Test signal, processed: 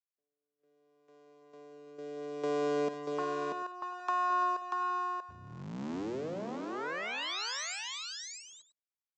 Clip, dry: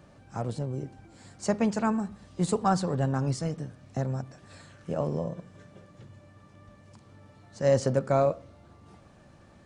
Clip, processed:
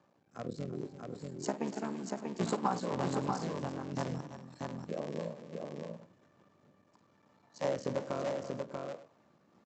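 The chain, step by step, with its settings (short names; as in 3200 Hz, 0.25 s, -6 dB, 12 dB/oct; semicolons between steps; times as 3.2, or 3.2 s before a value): cycle switcher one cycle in 3, muted; Chebyshev high-pass 210 Hz, order 2; spectral noise reduction 9 dB; steep low-pass 7700 Hz 96 dB/oct; bell 960 Hz +7 dB 0.66 oct; compressor 6:1, threshold -28 dBFS; rotary speaker horn 0.65 Hz; tapped delay 52/239/336/637/739 ms -14.5/-15.5/-13/-4/-17.5 dB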